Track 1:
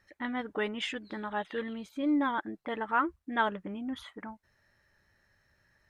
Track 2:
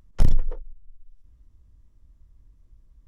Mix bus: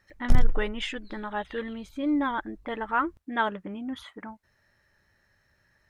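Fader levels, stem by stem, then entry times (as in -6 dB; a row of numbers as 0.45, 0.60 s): +2.0, -2.0 dB; 0.00, 0.10 s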